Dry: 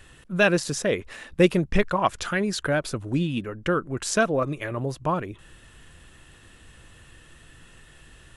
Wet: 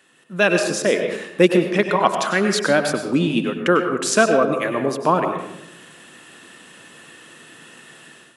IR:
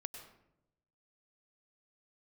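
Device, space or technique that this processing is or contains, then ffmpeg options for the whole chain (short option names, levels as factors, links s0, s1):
far laptop microphone: -filter_complex "[1:a]atrim=start_sample=2205[s0];[0:a][s0]afir=irnorm=-1:irlink=0,highpass=f=190:w=0.5412,highpass=f=190:w=1.3066,dynaudnorm=f=130:g=5:m=4.22"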